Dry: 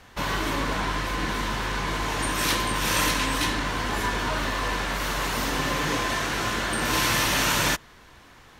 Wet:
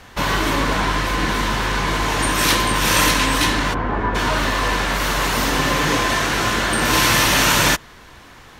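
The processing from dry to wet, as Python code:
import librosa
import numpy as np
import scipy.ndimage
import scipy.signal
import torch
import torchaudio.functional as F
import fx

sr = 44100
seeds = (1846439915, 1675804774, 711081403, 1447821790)

y = fx.lowpass(x, sr, hz=1300.0, slope=12, at=(3.73, 4.14), fade=0.02)
y = y * librosa.db_to_amplitude(7.5)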